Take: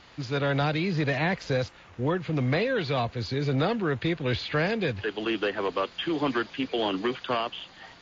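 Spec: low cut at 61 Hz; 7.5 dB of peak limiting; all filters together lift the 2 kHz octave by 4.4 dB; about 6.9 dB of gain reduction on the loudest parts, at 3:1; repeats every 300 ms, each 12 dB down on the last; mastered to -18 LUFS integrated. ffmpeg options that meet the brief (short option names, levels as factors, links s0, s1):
-af "highpass=61,equalizer=f=2000:t=o:g=5.5,acompressor=threshold=0.0316:ratio=3,alimiter=level_in=1.12:limit=0.0631:level=0:latency=1,volume=0.891,aecho=1:1:300|600|900:0.251|0.0628|0.0157,volume=6.68"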